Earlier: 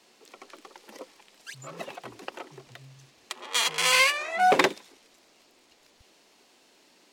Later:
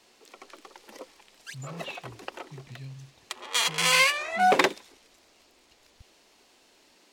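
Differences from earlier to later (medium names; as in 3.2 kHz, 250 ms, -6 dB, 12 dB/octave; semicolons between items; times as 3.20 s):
speech +11.5 dB; master: add bass shelf 230 Hz -3 dB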